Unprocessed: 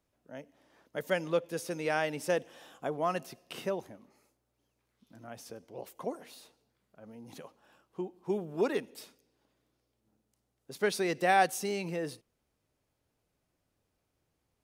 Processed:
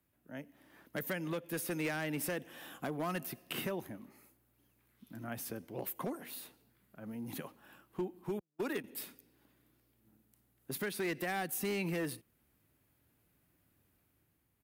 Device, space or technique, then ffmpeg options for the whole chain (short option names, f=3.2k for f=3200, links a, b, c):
FM broadcast chain: -filter_complex "[0:a]asettb=1/sr,asplit=3[a][b][c];[a]atrim=end=8.394[d];[b]atrim=start=8.39:end=8.84,asetpts=PTS-STARTPTS,afade=t=in:d=0.004:c=qsin,afade=t=out:st=0.446:d=0.004:c=qsin,agate=range=-49dB:threshold=-32dB:ratio=16:detection=peak[e];[c]atrim=start=8.836[f];[d][e]acrossfade=d=0.004:c1=hsin:c2=qsin[g];[g][f]acrossfade=d=0.004:c1=qsin:c2=hsin,highpass=51,firequalizer=gain_entry='entry(320,0);entry(460,-8);entry(1700,-2);entry(5700,-22)':delay=0.05:min_phase=1,dynaudnorm=f=100:g=13:m=5dB,acrossover=split=400|3800[h][i][j];[h]acompressor=threshold=-36dB:ratio=4[k];[i]acompressor=threshold=-34dB:ratio=4[l];[j]acompressor=threshold=-59dB:ratio=4[m];[k][l][m]amix=inputs=3:normalize=0,aemphasis=mode=production:type=50fm,alimiter=level_in=5dB:limit=-24dB:level=0:latency=1:release=386,volume=-5dB,asoftclip=type=hard:threshold=-33dB,lowpass=f=15k:w=0.5412,lowpass=f=15k:w=1.3066,aemphasis=mode=production:type=50fm,volume=3dB"